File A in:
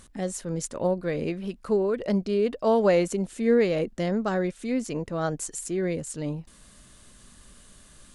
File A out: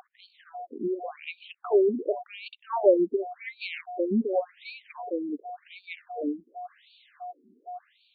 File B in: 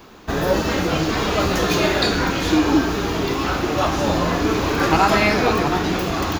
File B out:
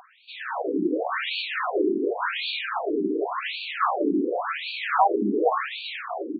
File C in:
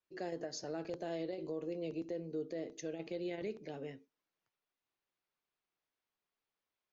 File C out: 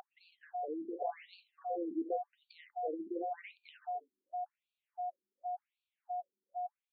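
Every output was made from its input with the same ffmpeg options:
-af "dynaudnorm=f=140:g=9:m=8dB,aeval=exprs='val(0)+0.0282*sin(2*PI*720*n/s)':c=same,afftfilt=real='re*between(b*sr/1024,290*pow(3300/290,0.5+0.5*sin(2*PI*0.9*pts/sr))/1.41,290*pow(3300/290,0.5+0.5*sin(2*PI*0.9*pts/sr))*1.41)':imag='im*between(b*sr/1024,290*pow(3300/290,0.5+0.5*sin(2*PI*0.9*pts/sr))/1.41,290*pow(3300/290,0.5+0.5*sin(2*PI*0.9*pts/sr))*1.41)':win_size=1024:overlap=0.75,volume=-3dB"

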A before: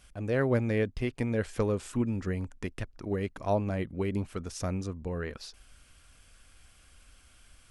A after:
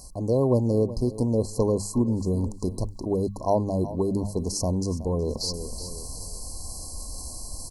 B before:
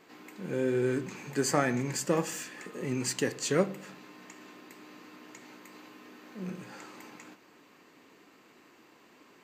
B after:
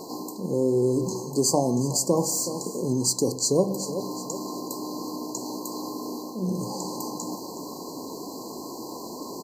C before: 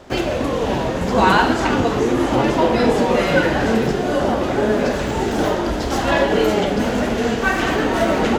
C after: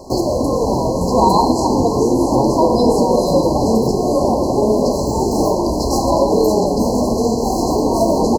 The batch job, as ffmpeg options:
-filter_complex "[0:a]highshelf=f=5.6k:g=5,aecho=1:1:371|742|1113:0.119|0.0368|0.0114,areverse,acompressor=mode=upward:threshold=-27dB:ratio=2.5,areverse,afftfilt=real='re*(1-between(b*sr/4096,1100,4000))':imag='im*(1-between(b*sr/4096,1100,4000))':win_size=4096:overlap=0.75,asplit=2[a][b];[b]acompressor=threshold=-26dB:ratio=6,volume=0dB[c];[a][c]amix=inputs=2:normalize=0,bandreject=f=50:t=h:w=6,bandreject=f=100:t=h:w=6,bandreject=f=150:t=h:w=6,bandreject=f=200:t=h:w=6,volume=1dB"

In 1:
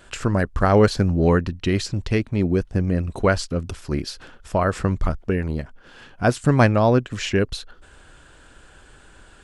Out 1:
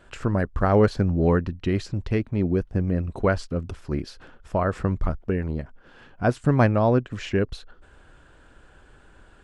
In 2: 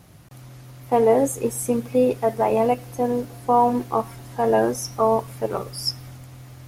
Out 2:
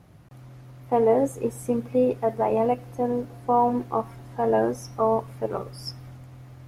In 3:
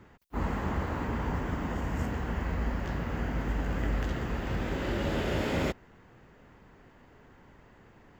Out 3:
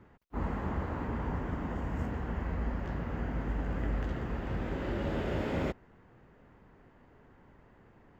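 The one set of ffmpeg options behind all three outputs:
-af "highshelf=f=3k:g=-11.5,volume=-2.5dB"

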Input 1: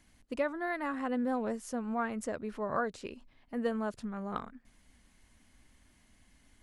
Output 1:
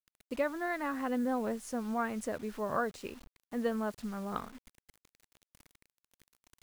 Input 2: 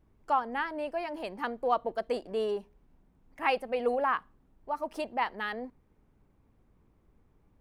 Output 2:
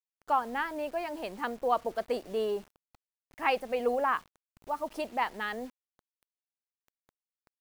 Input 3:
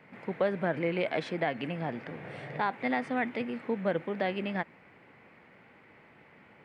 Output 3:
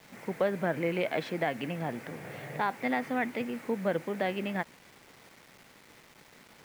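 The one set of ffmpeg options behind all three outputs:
-af "acrusher=bits=8:mix=0:aa=0.000001"

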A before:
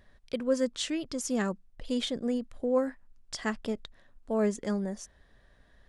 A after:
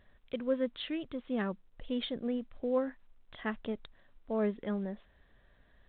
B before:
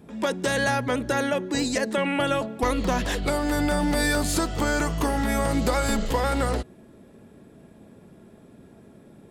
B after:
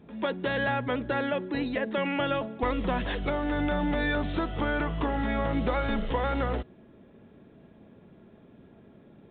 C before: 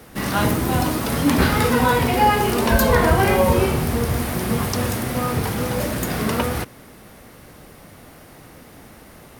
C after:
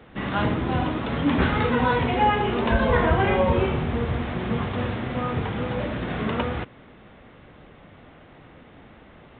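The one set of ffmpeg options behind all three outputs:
-af "volume=-4dB" -ar 8000 -c:a pcm_mulaw

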